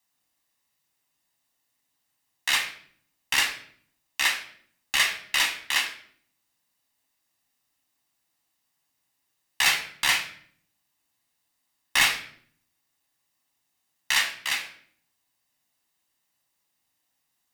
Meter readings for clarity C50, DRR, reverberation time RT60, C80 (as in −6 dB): 9.5 dB, 3.0 dB, 0.60 s, 13.5 dB